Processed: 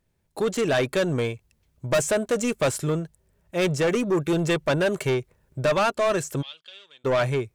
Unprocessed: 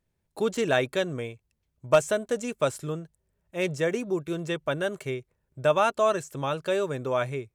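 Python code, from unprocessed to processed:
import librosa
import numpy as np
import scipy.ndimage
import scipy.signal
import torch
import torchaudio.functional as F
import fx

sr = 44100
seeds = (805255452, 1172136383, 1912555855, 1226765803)

y = fx.rider(x, sr, range_db=10, speed_s=0.5)
y = 10.0 ** (-26.0 / 20.0) * np.tanh(y / 10.0 ** (-26.0 / 20.0))
y = fx.bandpass_q(y, sr, hz=3300.0, q=10.0, at=(6.41, 7.04), fade=0.02)
y = F.gain(torch.from_numpy(y), 8.5).numpy()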